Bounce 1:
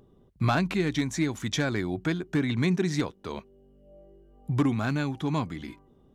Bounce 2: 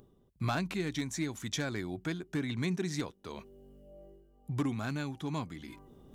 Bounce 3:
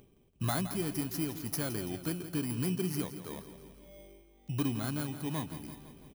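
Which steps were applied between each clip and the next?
high shelf 5600 Hz +8.5 dB; reverse; upward compressor, threshold -36 dBFS; reverse; gain -8 dB
FFT order left unsorted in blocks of 16 samples; on a send: feedback echo 0.167 s, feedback 59%, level -12 dB

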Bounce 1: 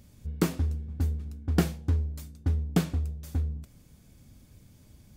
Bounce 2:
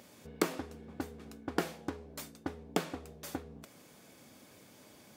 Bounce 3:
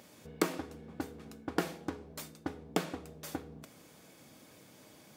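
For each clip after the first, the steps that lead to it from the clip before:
compressor 6:1, threshold -31 dBFS, peak gain reduction 12.5 dB; HPF 440 Hz 12 dB/oct; high shelf 3100 Hz -8 dB; gain +11 dB
shoebox room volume 2800 m³, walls furnished, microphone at 0.58 m

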